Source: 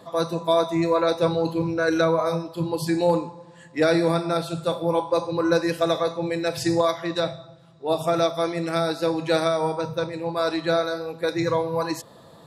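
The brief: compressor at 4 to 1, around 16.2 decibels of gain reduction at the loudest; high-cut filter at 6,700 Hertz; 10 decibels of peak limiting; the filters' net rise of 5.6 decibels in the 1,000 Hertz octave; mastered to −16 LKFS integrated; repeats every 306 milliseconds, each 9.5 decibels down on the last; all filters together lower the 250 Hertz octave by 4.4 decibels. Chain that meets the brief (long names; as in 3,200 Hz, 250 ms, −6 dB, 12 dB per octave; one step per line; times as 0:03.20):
low-pass filter 6,700 Hz
parametric band 250 Hz −8.5 dB
parametric band 1,000 Hz +7.5 dB
downward compressor 4 to 1, threshold −34 dBFS
brickwall limiter −30 dBFS
repeating echo 306 ms, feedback 33%, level −9.5 dB
level +23.5 dB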